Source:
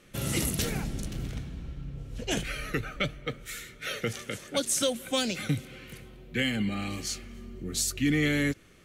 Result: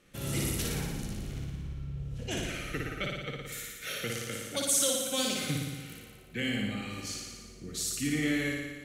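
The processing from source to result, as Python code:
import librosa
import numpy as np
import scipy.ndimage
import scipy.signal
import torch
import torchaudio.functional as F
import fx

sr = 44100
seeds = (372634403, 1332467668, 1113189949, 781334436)

y = fx.high_shelf(x, sr, hz=5800.0, db=10.0, at=(3.52, 5.94))
y = fx.room_flutter(y, sr, wall_m=9.9, rt60_s=1.3)
y = y * 10.0 ** (-6.5 / 20.0)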